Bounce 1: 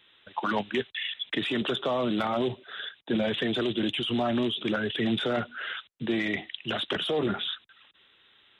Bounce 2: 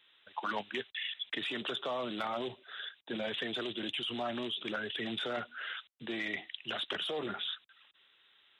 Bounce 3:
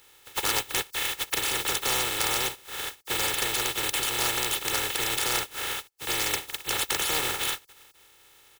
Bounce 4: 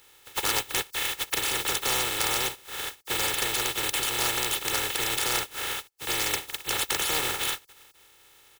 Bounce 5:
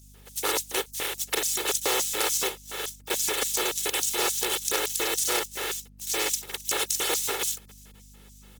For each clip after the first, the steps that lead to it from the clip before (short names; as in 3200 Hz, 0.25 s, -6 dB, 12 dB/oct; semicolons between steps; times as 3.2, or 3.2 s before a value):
low shelf 380 Hz -11.5 dB; gain -5 dB
spectral contrast lowered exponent 0.16; comb 2.3 ms, depth 61%; gain +8.5 dB
nothing audible
LFO high-pass square 3.5 Hz 400–6300 Hz; hum 50 Hz, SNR 23 dB; Opus 20 kbps 48000 Hz